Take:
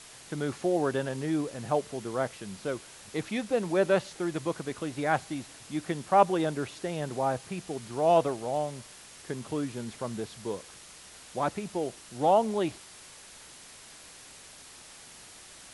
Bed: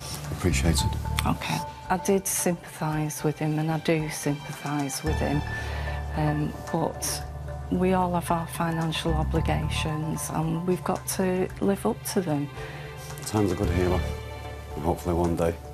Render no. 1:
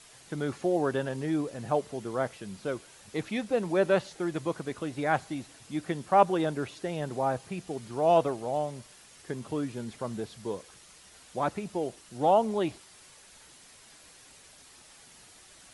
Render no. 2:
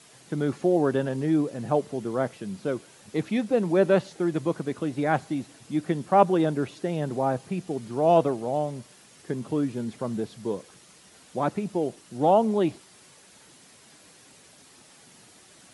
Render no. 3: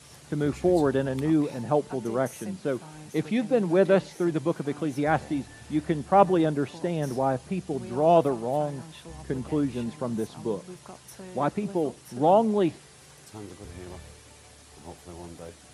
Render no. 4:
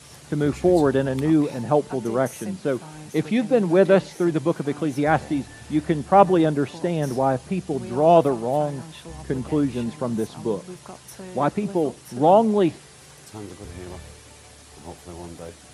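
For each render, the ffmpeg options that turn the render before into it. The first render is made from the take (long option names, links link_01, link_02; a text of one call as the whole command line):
ffmpeg -i in.wav -af "afftdn=noise_reduction=6:noise_floor=-50" out.wav
ffmpeg -i in.wav -af "highpass=160,lowshelf=frequency=360:gain=11.5" out.wav
ffmpeg -i in.wav -i bed.wav -filter_complex "[1:a]volume=-18dB[link_01];[0:a][link_01]amix=inputs=2:normalize=0" out.wav
ffmpeg -i in.wav -af "volume=4.5dB,alimiter=limit=-1dB:level=0:latency=1" out.wav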